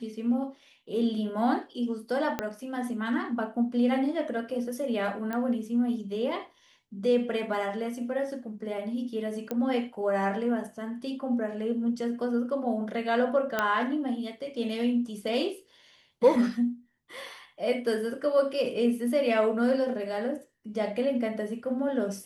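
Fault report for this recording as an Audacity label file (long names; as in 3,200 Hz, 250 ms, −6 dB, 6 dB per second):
2.390000	2.390000	click −14 dBFS
5.330000	5.330000	click −20 dBFS
9.510000	9.510000	click −18 dBFS
13.590000	13.590000	click −12 dBFS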